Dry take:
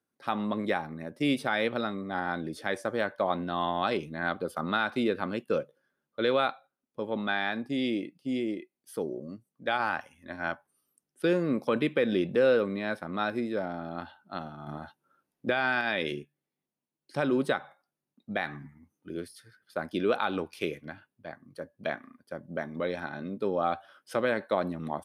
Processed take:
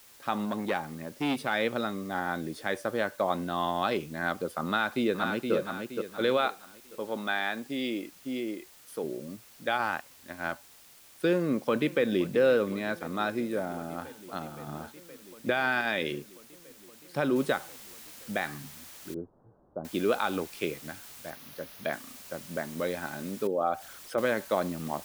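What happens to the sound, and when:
0:00.45–0:01.54: saturating transformer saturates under 810 Hz
0:04.67–0:05.54: delay throw 470 ms, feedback 40%, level −5 dB
0:06.37–0:09.04: low-shelf EQ 180 Hz −11 dB
0:09.82–0:10.52: mu-law and A-law mismatch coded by A
0:11.32–0:12.21: delay throw 520 ms, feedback 85%, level −18 dB
0:13.51–0:14.36: high shelf with overshoot 7,000 Hz +12 dB, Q 3
0:17.36: noise floor change −55 dB −48 dB
0:19.14–0:19.85: Gaussian smoothing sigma 11 samples
0:21.30–0:21.93: parametric band 7,900 Hz −14 dB 0.38 octaves
0:23.47–0:24.18: spectral envelope exaggerated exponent 1.5

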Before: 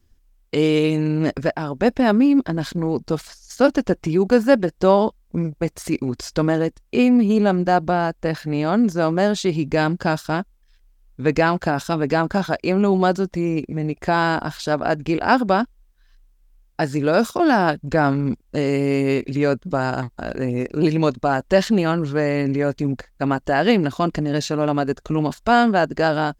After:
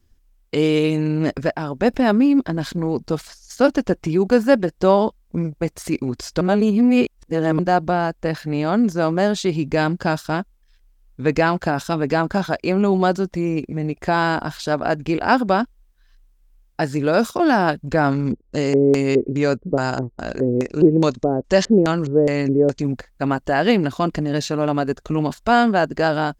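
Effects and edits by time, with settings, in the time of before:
0:01.94–0:03.06: upward compression, threshold −26 dBFS
0:06.41–0:07.59: reverse
0:18.11–0:22.82: auto-filter low-pass square 2.4 Hz 440–6,700 Hz

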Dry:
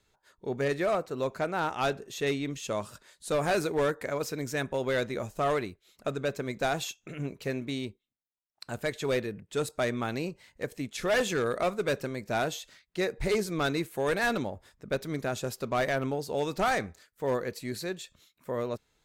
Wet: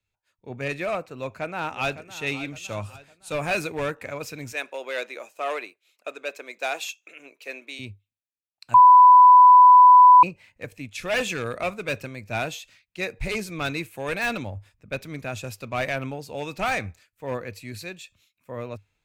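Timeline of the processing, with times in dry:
0:01.14–0:02.22: delay throw 560 ms, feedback 55%, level −12.5 dB
0:04.52–0:07.79: high-pass filter 360 Hz 24 dB per octave
0:08.74–0:10.23: beep over 996 Hz −11 dBFS
whole clip: thirty-one-band graphic EQ 100 Hz +12 dB, 400 Hz −6 dB, 2,500 Hz +12 dB; de-essing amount 55%; multiband upward and downward expander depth 40%

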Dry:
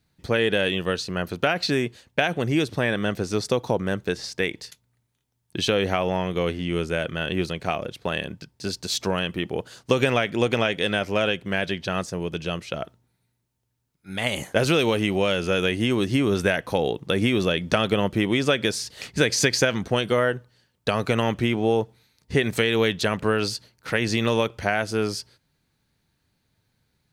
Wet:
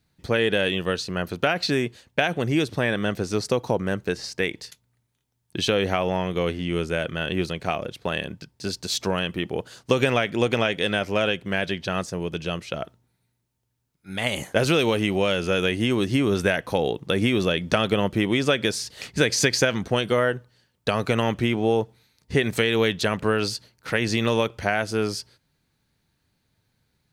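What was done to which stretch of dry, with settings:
0:03.36–0:04.41: notch filter 3,500 Hz

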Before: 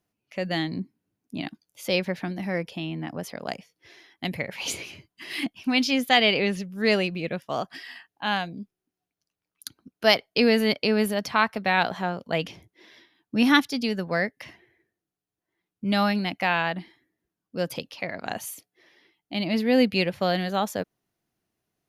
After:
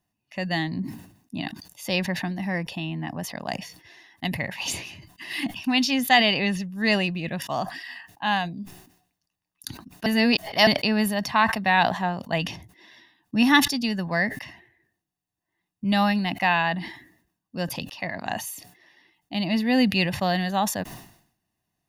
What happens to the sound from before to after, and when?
0:10.06–0:10.67: reverse
whole clip: comb filter 1.1 ms, depth 59%; level that may fall only so fast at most 90 dB per second

